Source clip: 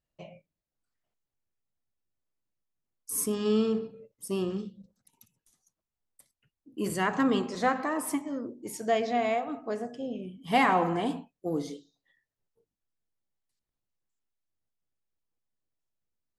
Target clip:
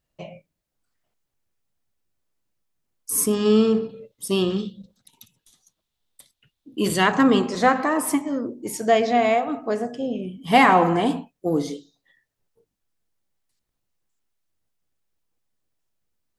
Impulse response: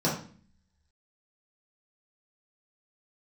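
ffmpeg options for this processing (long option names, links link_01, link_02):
-filter_complex "[0:a]asettb=1/sr,asplit=3[link_01][link_02][link_03];[link_01]atrim=end=3.894[link_04];[link_02]atrim=start=3.89:end=7.12,asetpts=PTS-STARTPTS,afade=type=in:duration=0.004:curve=qsin,afade=type=out:start_time=3.226:duration=0.004:curve=qsin,equalizer=frequency=3600:width_type=o:width=0.62:gain=12[link_05];[link_03]atrim=start=7.116[link_06];[link_04][link_05]acrossfade=duration=0.004:curve1=hsin:curve2=qsin[link_07];[link_07][link_06]acrossfade=duration=0.004:curve1=qsin:curve2=hsin,volume=8.5dB"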